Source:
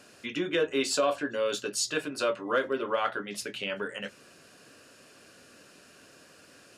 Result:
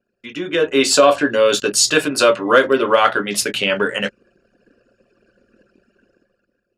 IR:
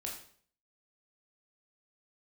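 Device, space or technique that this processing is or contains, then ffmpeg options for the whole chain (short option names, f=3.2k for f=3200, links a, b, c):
voice memo with heavy noise removal: -filter_complex "[0:a]asettb=1/sr,asplit=3[a][b][c];[a]atrim=end=1.844[d];[b]atrim=start=1.84:end=3.6,asetpts=PTS-STARTPTS,afade=t=in:d=0.004:c=qsin,afade=t=out:st=1.756:d=0.004:c=qsin,highshelf=f=5.2k:g=5[e];[c]atrim=start=3.596[f];[d][e]acrossfade=d=0.004:c1=hsin:c2=qsin[g];[g][f]acrossfade=d=0.004:c1=qsin:c2=hsin,anlmdn=0.0251,dynaudnorm=f=100:g=13:m=15dB,volume=1.5dB"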